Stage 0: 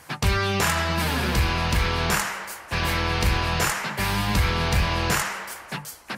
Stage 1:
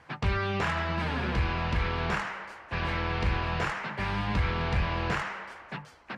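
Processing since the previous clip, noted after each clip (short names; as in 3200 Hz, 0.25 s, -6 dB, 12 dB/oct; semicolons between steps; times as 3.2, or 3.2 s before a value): LPF 2800 Hz 12 dB/oct; gain -5.5 dB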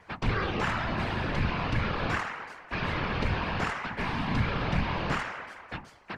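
whisperiser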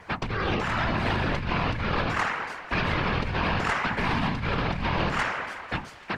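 negative-ratio compressor -32 dBFS, ratio -1; thinning echo 0.278 s, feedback 84%, high-pass 1100 Hz, level -20 dB; gain +5.5 dB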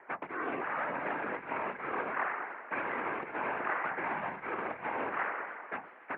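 mistuned SSB -72 Hz 350–2300 Hz; gain -6 dB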